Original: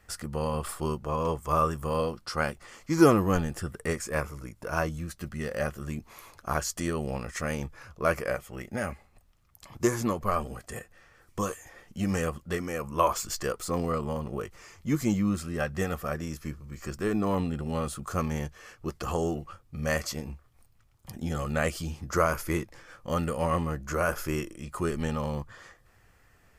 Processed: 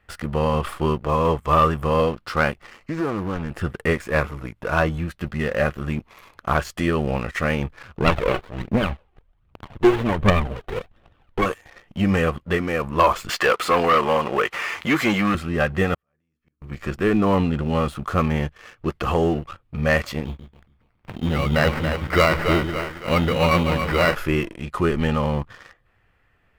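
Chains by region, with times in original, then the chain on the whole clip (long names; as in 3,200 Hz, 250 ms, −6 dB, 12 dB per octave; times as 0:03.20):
0:02.67–0:03.60: Butterworth band-reject 3,400 Hz, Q 7.3 + downward compressor 3 to 1, threshold −35 dBFS + highs frequency-modulated by the lows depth 0.2 ms
0:07.98–0:11.46: phase shifter 1.3 Hz, delay 2.8 ms, feedback 65% + windowed peak hold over 17 samples
0:13.29–0:15.35: mid-hump overdrive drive 20 dB, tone 1,500 Hz, clips at −14 dBFS + spectral tilt +3 dB per octave + upward compression, threshold −30 dBFS
0:15.94–0:16.62: mains-hum notches 60/120/180/240/300/360/420/480 Hz + transient designer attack −11 dB, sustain +5 dB + gate with flip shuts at −31 dBFS, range −38 dB
0:20.25–0:24.15: echo with a time of its own for lows and highs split 410 Hz, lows 139 ms, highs 280 ms, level −8 dB + sample-rate reduction 3,400 Hz
whole clip: high shelf with overshoot 4,300 Hz −12 dB, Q 1.5; leveller curve on the samples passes 2; level +1.5 dB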